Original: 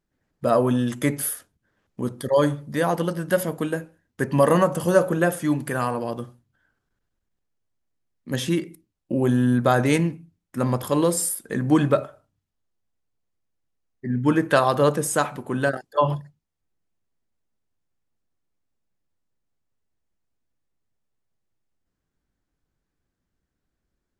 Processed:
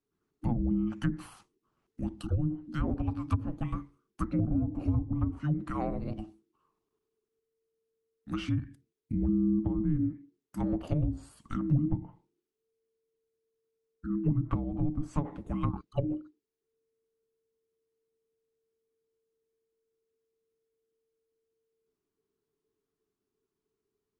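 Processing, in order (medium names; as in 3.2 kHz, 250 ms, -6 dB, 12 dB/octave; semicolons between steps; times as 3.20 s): low-pass that closes with the level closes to 410 Hz, closed at -15 dBFS; frequency shift -450 Hz; trim -7 dB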